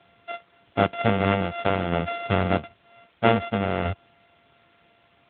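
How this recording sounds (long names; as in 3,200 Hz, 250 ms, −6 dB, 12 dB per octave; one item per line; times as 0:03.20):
a buzz of ramps at a fixed pitch in blocks of 64 samples
tremolo saw down 0.52 Hz, depth 45%
a quantiser's noise floor 10 bits, dither triangular
AMR narrowband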